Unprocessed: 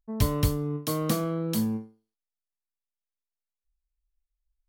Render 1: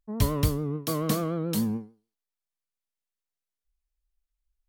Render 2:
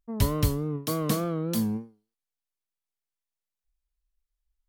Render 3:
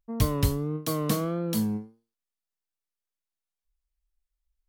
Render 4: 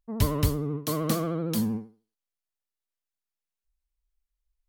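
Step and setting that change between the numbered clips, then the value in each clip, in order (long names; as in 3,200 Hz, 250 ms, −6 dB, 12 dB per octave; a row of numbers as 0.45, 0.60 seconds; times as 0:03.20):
pitch vibrato, speed: 6.9, 3.4, 1.6, 13 Hertz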